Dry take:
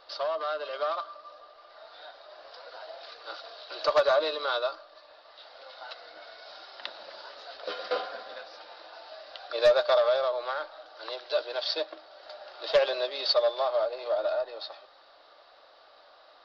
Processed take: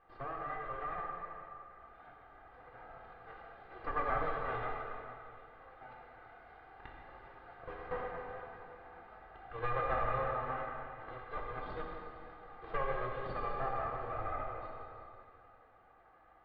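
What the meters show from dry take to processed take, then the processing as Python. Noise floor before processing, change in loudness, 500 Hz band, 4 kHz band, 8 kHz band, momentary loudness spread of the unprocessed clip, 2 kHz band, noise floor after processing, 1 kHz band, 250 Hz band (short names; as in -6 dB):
-56 dBFS, -11.0 dB, -15.0 dB, -27.5 dB, n/a, 23 LU, -6.5 dB, -62 dBFS, -3.5 dB, 0.0 dB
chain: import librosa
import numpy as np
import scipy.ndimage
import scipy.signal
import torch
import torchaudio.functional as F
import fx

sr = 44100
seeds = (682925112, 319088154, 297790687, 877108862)

y = fx.lower_of_two(x, sr, delay_ms=2.5)
y = scipy.signal.sosfilt(scipy.signal.butter(4, 1900.0, 'lowpass', fs=sr, output='sos'), y)
y = fx.rev_plate(y, sr, seeds[0], rt60_s=2.7, hf_ratio=0.95, predelay_ms=0, drr_db=-1.5)
y = F.gain(torch.from_numpy(y), -8.5).numpy()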